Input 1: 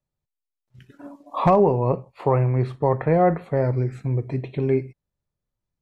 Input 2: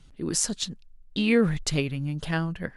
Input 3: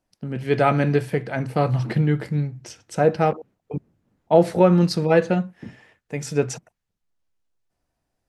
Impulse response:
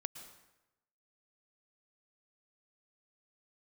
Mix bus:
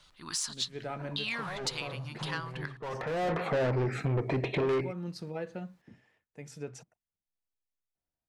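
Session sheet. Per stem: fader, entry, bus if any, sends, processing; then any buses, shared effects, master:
−2.5 dB, 0.00 s, no send, mid-hump overdrive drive 31 dB, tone 2,600 Hz, clips at −7 dBFS; automatic ducking −23 dB, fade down 1.40 s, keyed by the second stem
−2.5 dB, 0.00 s, send −20.5 dB, low shelf with overshoot 700 Hz −13.5 dB, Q 3; soft clipping −17 dBFS, distortion −17 dB; parametric band 4,100 Hz +9 dB 0.85 octaves
−17.0 dB, 0.25 s, no send, no processing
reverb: on, RT60 0.95 s, pre-delay 103 ms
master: downward compressor 2 to 1, threshold −36 dBFS, peak gain reduction 11.5 dB

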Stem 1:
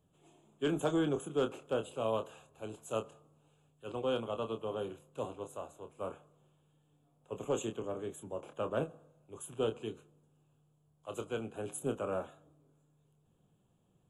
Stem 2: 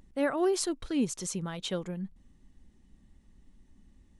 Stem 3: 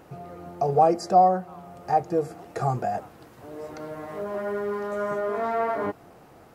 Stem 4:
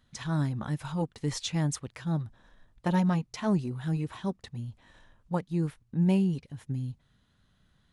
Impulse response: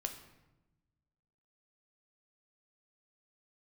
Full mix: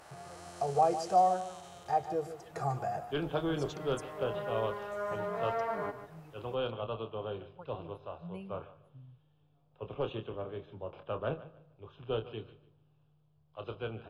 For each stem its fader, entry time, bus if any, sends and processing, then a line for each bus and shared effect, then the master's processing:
−1.0 dB, 2.50 s, send −14 dB, echo send −15.5 dB, Butterworth low-pass 5,200 Hz 96 dB per octave; low-shelf EQ 150 Hz +9 dB
−5.0 dB, 0.00 s, no send, no echo send, spectrum smeared in time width 915 ms; Butterworth high-pass 640 Hz 96 dB per octave
−7.0 dB, 0.00 s, no send, echo send −11.5 dB, no processing
−13.0 dB, 2.25 s, no send, no echo send, spectral dynamics exaggerated over time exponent 2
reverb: on, RT60 1.0 s, pre-delay 5 ms
echo: repeating echo 148 ms, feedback 24%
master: parametric band 240 Hz −8.5 dB 1.2 octaves

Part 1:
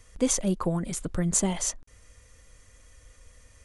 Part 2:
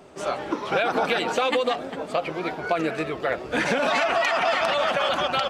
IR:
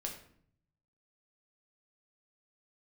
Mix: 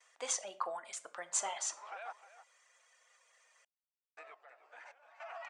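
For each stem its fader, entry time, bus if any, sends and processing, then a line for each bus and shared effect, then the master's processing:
−4.0 dB, 0.00 s, send −5 dB, no echo send, noise gate with hold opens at −50 dBFS; reverb reduction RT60 0.66 s
−12.0 dB, 1.20 s, muted 0:02.13–0:04.17, no send, echo send −14.5 dB, parametric band 3,600 Hz −8.5 dB 0.79 octaves; downward compressor, threshold −25 dBFS, peak gain reduction 6.5 dB; sample-and-hold tremolo, depth 90%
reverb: on, RT60 0.60 s, pre-delay 6 ms
echo: single-tap delay 309 ms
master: Chebyshev band-pass filter 730–8,200 Hz, order 3; high-shelf EQ 3,400 Hz −8 dB

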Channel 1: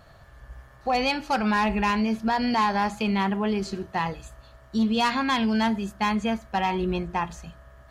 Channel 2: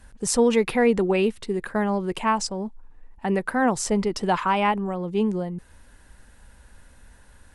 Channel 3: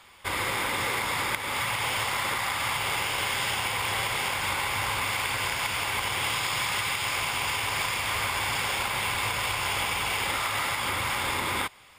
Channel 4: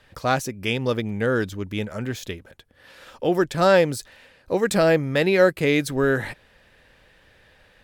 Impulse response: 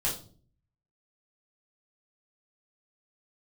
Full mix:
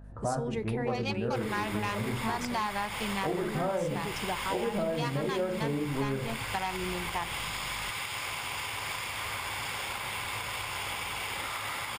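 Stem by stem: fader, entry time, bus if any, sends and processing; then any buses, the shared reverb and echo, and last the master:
+0.5 dB, 0.00 s, no send, adaptive Wiener filter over 41 samples; low-shelf EQ 430 Hz −11.5 dB; mains hum 50 Hz, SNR 16 dB
−11.0 dB, 0.00 s, send −22.5 dB, downward expander −41 dBFS
−7.0 dB, 1.10 s, no send, no processing
−7.0 dB, 0.00 s, send −5.5 dB, low-pass filter 1,200 Hz 24 dB per octave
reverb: on, pre-delay 3 ms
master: downward compressor 6 to 1, threshold −28 dBFS, peak gain reduction 12.5 dB

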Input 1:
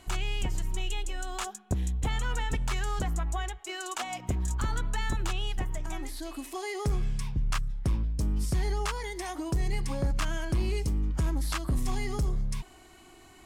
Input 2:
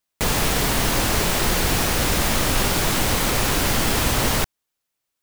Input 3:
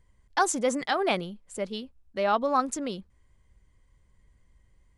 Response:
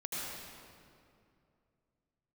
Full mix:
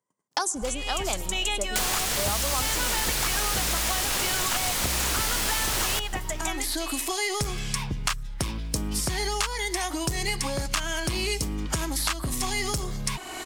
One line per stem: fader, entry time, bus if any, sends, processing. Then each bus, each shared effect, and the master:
−6.0 dB, 0.55 s, no send, automatic gain control gain up to 11 dB
−9.5 dB, 1.55 s, send −21.5 dB, parametric band 8,100 Hz +7.5 dB 2.8 octaves
−3.0 dB, 0.00 s, send −20.5 dB, noise gate −55 dBFS, range −35 dB; high-pass filter 160 Hz 24 dB per octave; flat-topped bell 2,700 Hz −10.5 dB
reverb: on, RT60 2.5 s, pre-delay 72 ms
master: low-shelf EQ 350 Hz −10 dB; multiband upward and downward compressor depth 100%

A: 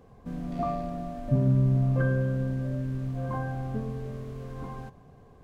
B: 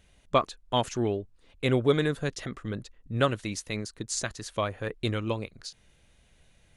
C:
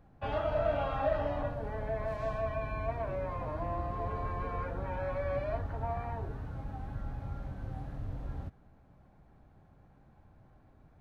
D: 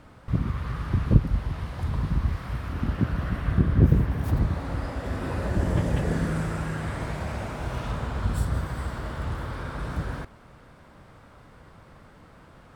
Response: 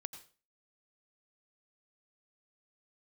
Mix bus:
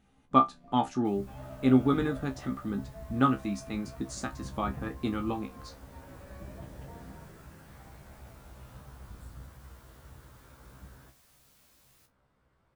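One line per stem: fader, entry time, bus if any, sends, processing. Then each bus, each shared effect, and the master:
−14.0 dB, 0.05 s, no send, automatic ducking −13 dB, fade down 1.95 s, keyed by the second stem
−5.5 dB, 0.00 s, no send, hollow resonant body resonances 250/810/1,200 Hz, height 18 dB, ringing for 30 ms
−11.0 dB, 1.05 s, no send, bit-depth reduction 8 bits, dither triangular
−16.0 dB, 0.85 s, no send, no processing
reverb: not used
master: tuned comb filter 66 Hz, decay 0.16 s, harmonics all, mix 100%

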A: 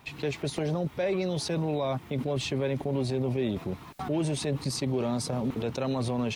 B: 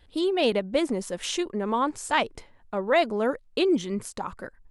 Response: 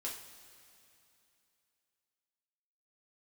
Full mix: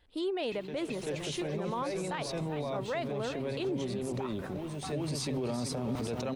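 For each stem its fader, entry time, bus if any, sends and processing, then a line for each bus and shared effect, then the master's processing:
+2.0 dB, 0.45 s, send −21 dB, echo send −8 dB, hum removal 65.6 Hz, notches 3; automatic ducking −17 dB, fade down 0.70 s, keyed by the second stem
−6.5 dB, 0.00 s, no send, echo send −18 dB, bass and treble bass −4 dB, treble −3 dB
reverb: on, pre-delay 3 ms
echo: repeating echo 385 ms, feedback 15%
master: brickwall limiter −26 dBFS, peak gain reduction 10.5 dB

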